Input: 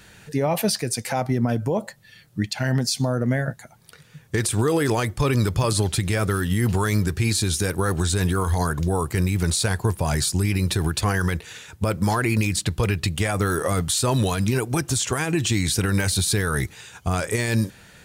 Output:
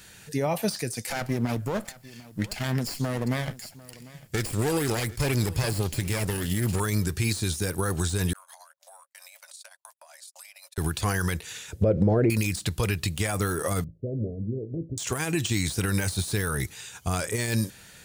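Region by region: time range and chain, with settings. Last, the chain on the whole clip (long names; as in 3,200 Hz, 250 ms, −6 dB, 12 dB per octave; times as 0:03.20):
0:01.10–0:06.80: lower of the sound and its delayed copy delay 0.41 ms + single-tap delay 748 ms −20 dB
0:08.33–0:10.78: noise gate −21 dBFS, range −56 dB + Chebyshev high-pass filter 550 Hz, order 8 + downward compressor, threshold −45 dBFS
0:11.72–0:12.30: treble cut that deepens with the level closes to 1,100 Hz, closed at −16.5 dBFS + low shelf with overshoot 720 Hz +10 dB, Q 3 + downward compressor 4 to 1, threshold −13 dBFS
0:13.84–0:14.98: Butterworth low-pass 590 Hz 72 dB per octave + tuned comb filter 55 Hz, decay 0.3 s
whole clip: high-shelf EQ 3,600 Hz +10 dB; de-essing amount 40%; level −4.5 dB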